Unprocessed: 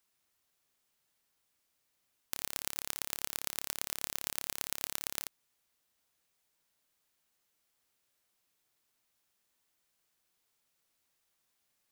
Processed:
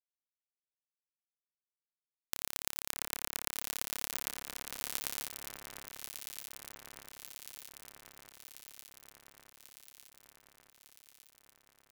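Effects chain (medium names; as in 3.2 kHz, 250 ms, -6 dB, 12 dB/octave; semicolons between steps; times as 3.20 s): 4.31–4.79 s: treble shelf 5 kHz -11.5 dB; crossover distortion -31.5 dBFS; on a send: echo whose repeats swap between lows and highs 602 ms, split 2.1 kHz, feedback 80%, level -5.5 dB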